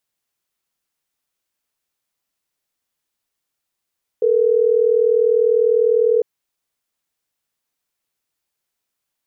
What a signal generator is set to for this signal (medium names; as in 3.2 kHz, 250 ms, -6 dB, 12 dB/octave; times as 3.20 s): call progress tone ringback tone, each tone -15 dBFS